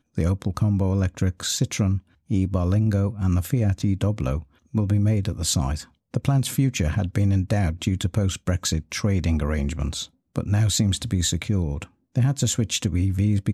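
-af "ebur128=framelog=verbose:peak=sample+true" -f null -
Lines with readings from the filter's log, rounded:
Integrated loudness:
  I:         -23.8 LUFS
  Threshold: -33.9 LUFS
Loudness range:
  LRA:         1.1 LU
  Threshold: -43.9 LUFS
  LRA low:   -24.4 LUFS
  LRA high:  -23.3 LUFS
Sample peak:
  Peak:       -8.4 dBFS
True peak:
  Peak:       -8.4 dBFS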